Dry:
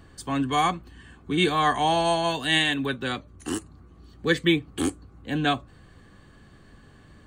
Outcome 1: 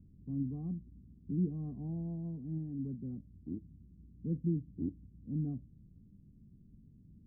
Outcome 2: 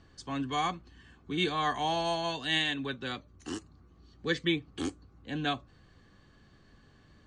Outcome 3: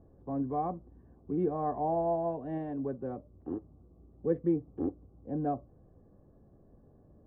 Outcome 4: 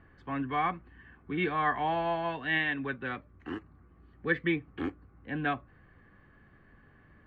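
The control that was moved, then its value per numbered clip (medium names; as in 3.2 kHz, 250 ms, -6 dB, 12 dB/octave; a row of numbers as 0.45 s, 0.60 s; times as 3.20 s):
four-pole ladder low-pass, frequency: 250 Hz, 6.8 kHz, 740 Hz, 2.4 kHz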